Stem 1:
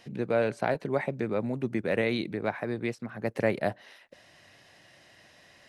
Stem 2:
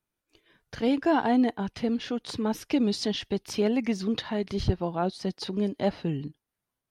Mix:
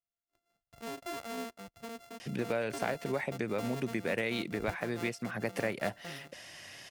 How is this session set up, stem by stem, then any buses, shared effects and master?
+2.5 dB, 2.20 s, no send, treble shelf 2.1 kHz +10.5 dB; band-stop 4 kHz, Q 8.3; compression 3:1, threshold -35 dBFS, peak gain reduction 12.5 dB
-17.5 dB, 0.00 s, no send, sorted samples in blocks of 64 samples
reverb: none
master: none

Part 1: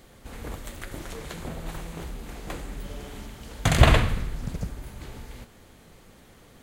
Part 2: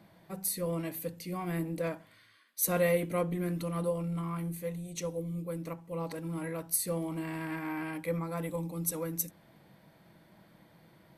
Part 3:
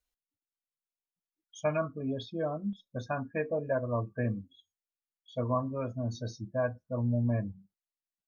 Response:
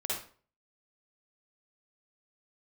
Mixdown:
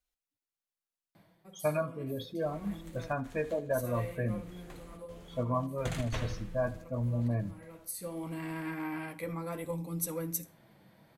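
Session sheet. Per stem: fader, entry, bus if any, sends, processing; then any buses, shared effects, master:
-11.5 dB, 2.20 s, no send, echo send -10 dB, trance gate "x.xxxxxx.xxx.x.x" 130 bpm
+2.0 dB, 1.15 s, send -21 dB, no echo send, auto duck -17 dB, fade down 0.35 s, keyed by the third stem
+2.5 dB, 0.00 s, no send, echo send -20 dB, none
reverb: on, RT60 0.40 s, pre-delay 47 ms
echo: feedback delay 78 ms, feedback 48%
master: flange 0.69 Hz, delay 5.4 ms, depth 4.5 ms, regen -49%

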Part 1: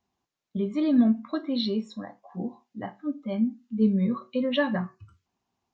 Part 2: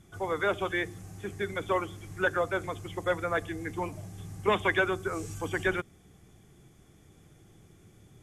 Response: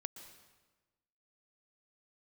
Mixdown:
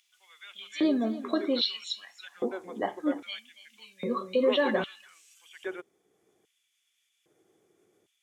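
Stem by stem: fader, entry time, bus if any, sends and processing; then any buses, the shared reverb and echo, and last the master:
+3.0 dB, 0.00 s, no send, echo send -15 dB, treble shelf 3.1 kHz +9 dB; peak limiter -22.5 dBFS, peak gain reduction 11 dB
-12.5 dB, 0.00 s, no send, no echo send, upward compressor, threshold -48 dBFS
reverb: none
echo: delay 283 ms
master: bass shelf 93 Hz +10 dB; LFO high-pass square 0.62 Hz 410–2800 Hz

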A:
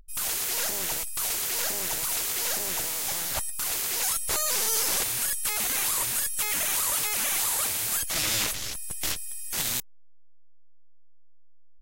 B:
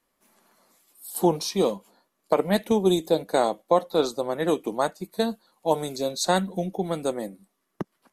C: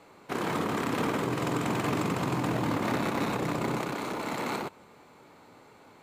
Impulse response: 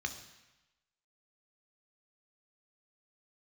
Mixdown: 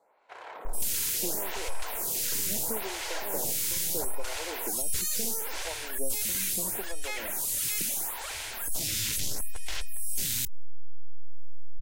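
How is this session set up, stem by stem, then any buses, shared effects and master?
-2.5 dB, 0.65 s, no send, saturation -20.5 dBFS, distortion -18 dB; level flattener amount 100%
-6.5 dB, 0.00 s, no send, compression, threshold -26 dBFS, peak gain reduction 12 dB; band-pass filter 420 Hz, Q 0.68
-10.5 dB, 0.00 s, no send, resonant low shelf 400 Hz -13 dB, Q 1.5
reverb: none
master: bass shelf 78 Hz +8 dB; band-stop 1.2 kHz, Q 7.1; lamp-driven phase shifter 0.75 Hz

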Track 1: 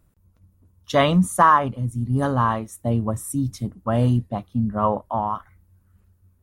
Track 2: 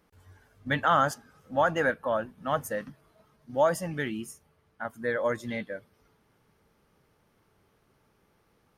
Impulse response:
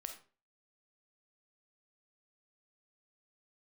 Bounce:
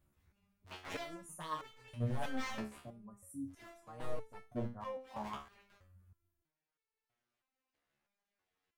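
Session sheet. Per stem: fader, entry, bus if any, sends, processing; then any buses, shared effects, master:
-2.5 dB, 0.00 s, send -9.5 dB, high-order bell 3.6 kHz -16 dB 1.2 oct; random-step tremolo 1.5 Hz, depth 80%
-7.5 dB, 0.00 s, send -6 dB, cycle switcher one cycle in 2, inverted; frequency weighting A; ring modulator with a swept carrier 750 Hz, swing 70%, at 5.3 Hz; auto duck -16 dB, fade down 2.00 s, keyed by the first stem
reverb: on, RT60 0.40 s, pre-delay 5 ms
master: wavefolder -23 dBFS; resonator arpeggio 3.1 Hz 71–440 Hz

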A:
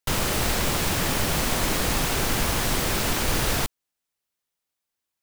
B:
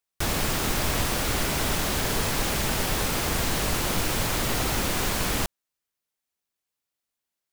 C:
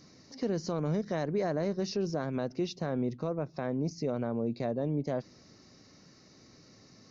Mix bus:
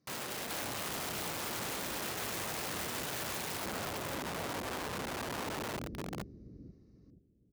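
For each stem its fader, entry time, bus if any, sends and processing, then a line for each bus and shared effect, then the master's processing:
-9.5 dB, 0.00 s, bus A, no send, echo send -13 dB, bass shelf 110 Hz -11.5 dB
+1.0 dB, 0.30 s, bus A, no send, echo send -11 dB, inverse Chebyshev low-pass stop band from 940 Hz, stop band 50 dB
-18.0 dB, 0.00 s, no bus, no send, no echo send, none
bus A: 0.0 dB, high-pass 180 Hz 6 dB/octave; peak limiter -25.5 dBFS, peak gain reduction 6 dB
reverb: none
echo: feedback delay 476 ms, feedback 36%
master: treble shelf 2.4 kHz -9.5 dB; integer overflow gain 33.5 dB; high-pass 70 Hz

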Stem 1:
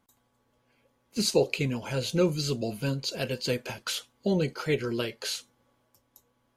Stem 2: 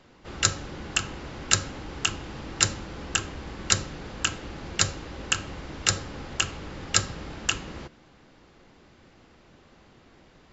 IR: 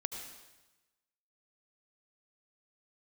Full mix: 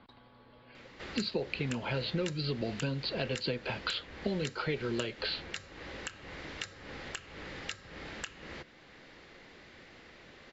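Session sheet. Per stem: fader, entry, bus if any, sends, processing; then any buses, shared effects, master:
+2.5 dB, 0.00 s, no send, elliptic low-pass 4.4 kHz; compression, threshold -32 dBFS, peak gain reduction 13 dB
-13.0 dB, 0.75 s, no send, peaking EQ 1.9 kHz +4 dB 0.54 oct; compression 12:1, threshold -32 dBFS, peak gain reduction 18.5 dB; graphic EQ 500/2000/4000 Hz +5/+7/+7 dB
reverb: none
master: three bands compressed up and down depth 40%

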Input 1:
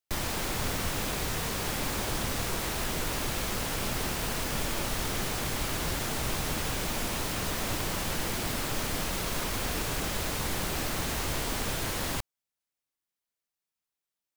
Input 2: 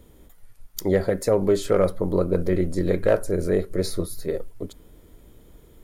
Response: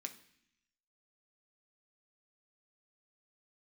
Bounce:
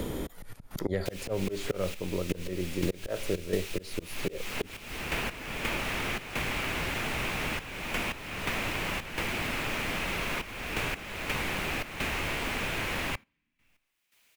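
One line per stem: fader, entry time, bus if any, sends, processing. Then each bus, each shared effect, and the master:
-10.0 dB, 0.95 s, send -13.5 dB, peaking EQ 2.5 kHz +11.5 dB 0.88 oct
+3.0 dB, 0.00 s, no send, treble shelf 3.9 kHz -11.5 dB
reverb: on, RT60 0.65 s, pre-delay 3 ms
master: slow attack 334 ms; trance gate "xxx.xxxxxxx..x.." 85 bpm -12 dB; three bands compressed up and down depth 100%

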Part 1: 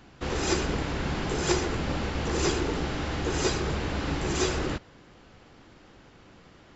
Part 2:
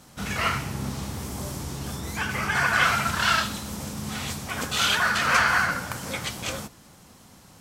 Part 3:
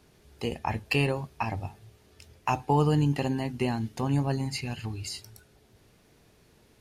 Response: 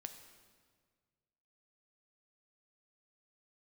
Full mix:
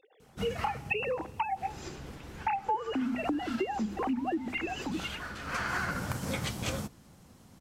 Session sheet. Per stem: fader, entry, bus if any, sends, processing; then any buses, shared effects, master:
-17.5 dB, 1.35 s, no send, none
+1.0 dB, 0.20 s, no send, bass shelf 490 Hz +8.5 dB; upward expansion 1.5:1, over -39 dBFS; auto duck -19 dB, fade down 1.20 s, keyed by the third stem
+1.5 dB, 0.00 s, send -13 dB, formants replaced by sine waves; hum notches 50/100/150/200/250 Hz; small resonant body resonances 320/780 Hz, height 10 dB, ringing for 65 ms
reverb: on, RT60 1.7 s, pre-delay 4 ms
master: compression 10:1, threshold -28 dBFS, peak gain reduction 19 dB

